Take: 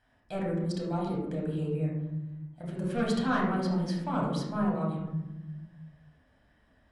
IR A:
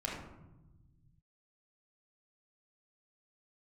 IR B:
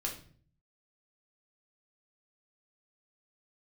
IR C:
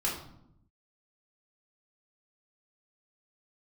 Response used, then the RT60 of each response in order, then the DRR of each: A; 1.0, 0.50, 0.75 seconds; −4.0, −1.5, −5.0 decibels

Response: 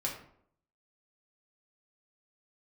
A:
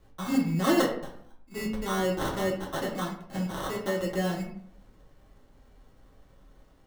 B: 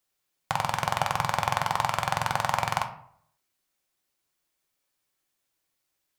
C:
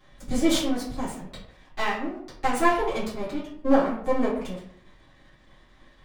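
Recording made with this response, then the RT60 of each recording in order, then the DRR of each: A; 0.65, 0.65, 0.65 seconds; −3.0, 5.0, −11.0 decibels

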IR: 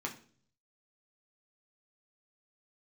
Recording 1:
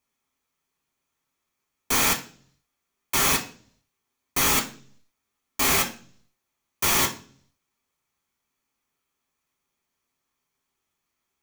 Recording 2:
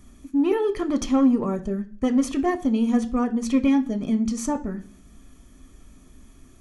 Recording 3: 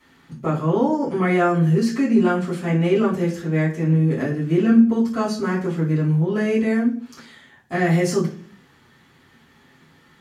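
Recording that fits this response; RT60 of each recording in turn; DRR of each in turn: 1; 0.45, 0.45, 0.45 seconds; 0.5, 7.0, −8.5 decibels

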